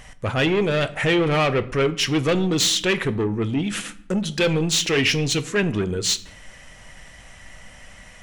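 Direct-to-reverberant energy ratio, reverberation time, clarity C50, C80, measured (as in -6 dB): 11.5 dB, 0.65 s, 17.0 dB, 20.0 dB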